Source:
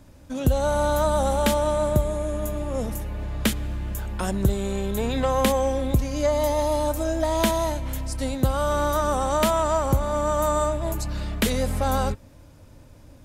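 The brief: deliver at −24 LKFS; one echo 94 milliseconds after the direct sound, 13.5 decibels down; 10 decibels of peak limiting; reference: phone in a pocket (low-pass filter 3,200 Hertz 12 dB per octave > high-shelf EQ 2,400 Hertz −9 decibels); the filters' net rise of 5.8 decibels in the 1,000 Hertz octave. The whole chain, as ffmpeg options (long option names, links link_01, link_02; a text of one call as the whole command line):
ffmpeg -i in.wav -af "equalizer=frequency=1000:width_type=o:gain=8.5,alimiter=limit=-15.5dB:level=0:latency=1,lowpass=3200,highshelf=frequency=2400:gain=-9,aecho=1:1:94:0.211,volume=2dB" out.wav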